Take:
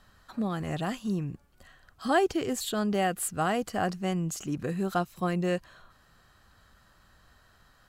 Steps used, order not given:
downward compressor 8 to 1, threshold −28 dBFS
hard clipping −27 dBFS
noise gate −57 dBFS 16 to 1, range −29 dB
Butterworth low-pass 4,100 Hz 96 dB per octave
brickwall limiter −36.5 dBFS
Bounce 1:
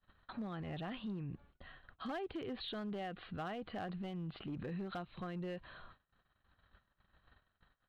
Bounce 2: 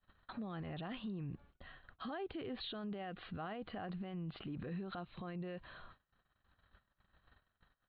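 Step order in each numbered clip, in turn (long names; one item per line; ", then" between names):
noise gate, then downward compressor, then Butterworth low-pass, then hard clipping, then brickwall limiter
Butterworth low-pass, then downward compressor, then noise gate, then brickwall limiter, then hard clipping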